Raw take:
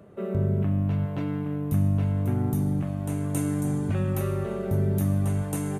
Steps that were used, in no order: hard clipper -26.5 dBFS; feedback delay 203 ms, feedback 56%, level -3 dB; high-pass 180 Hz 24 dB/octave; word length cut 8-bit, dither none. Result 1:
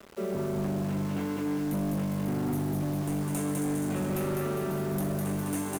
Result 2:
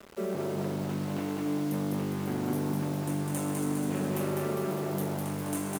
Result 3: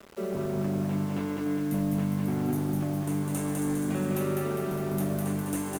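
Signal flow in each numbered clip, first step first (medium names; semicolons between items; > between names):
high-pass > word length cut > feedback delay > hard clipper; hard clipper > high-pass > word length cut > feedback delay; high-pass > hard clipper > feedback delay > word length cut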